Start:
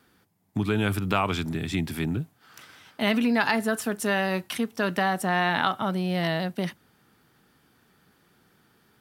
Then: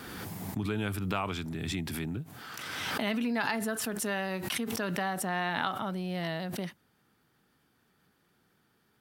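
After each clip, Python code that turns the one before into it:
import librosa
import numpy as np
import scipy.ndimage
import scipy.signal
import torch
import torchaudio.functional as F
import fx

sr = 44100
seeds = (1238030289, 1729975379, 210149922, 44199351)

y = fx.pre_swell(x, sr, db_per_s=25.0)
y = y * 10.0 ** (-8.0 / 20.0)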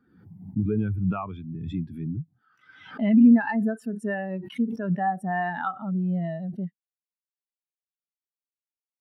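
y = fx.spectral_expand(x, sr, expansion=2.5)
y = y * 10.0 ** (4.5 / 20.0)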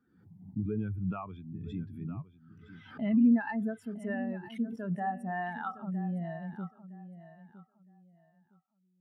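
y = fx.echo_feedback(x, sr, ms=962, feedback_pct=23, wet_db=-14.0)
y = y * 10.0 ** (-8.0 / 20.0)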